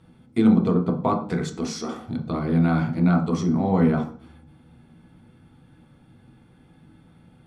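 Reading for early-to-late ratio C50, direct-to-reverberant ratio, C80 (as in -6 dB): 9.0 dB, 1.5 dB, 13.5 dB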